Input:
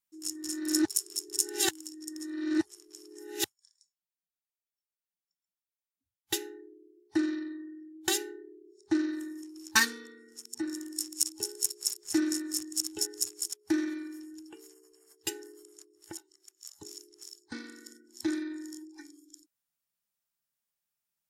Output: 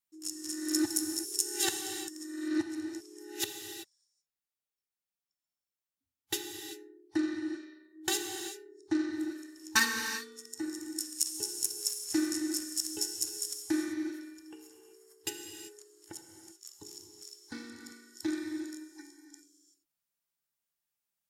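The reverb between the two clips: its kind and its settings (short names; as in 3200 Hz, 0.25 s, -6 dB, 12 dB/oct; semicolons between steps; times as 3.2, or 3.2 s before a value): non-linear reverb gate 0.41 s flat, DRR 4 dB; gain -2.5 dB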